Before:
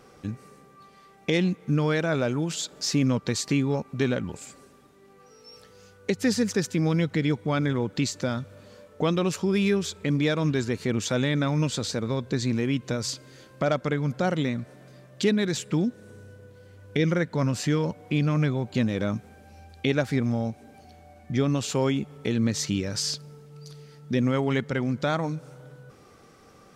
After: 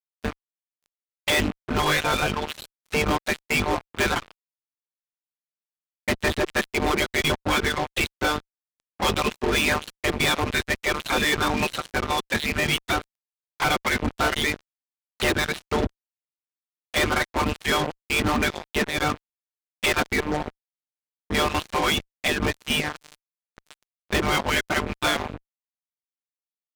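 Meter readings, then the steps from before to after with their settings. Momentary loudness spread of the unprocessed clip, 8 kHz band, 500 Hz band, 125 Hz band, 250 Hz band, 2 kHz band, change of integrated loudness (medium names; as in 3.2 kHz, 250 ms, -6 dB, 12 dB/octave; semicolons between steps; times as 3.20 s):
10 LU, +2.0 dB, 0.0 dB, -6.0 dB, -4.0 dB, +10.0 dB, +2.0 dB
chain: monotone LPC vocoder at 8 kHz 150 Hz; reverb removal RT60 1.3 s; spectral gate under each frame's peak -15 dB weak; fuzz box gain 42 dB, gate -49 dBFS; trim -5 dB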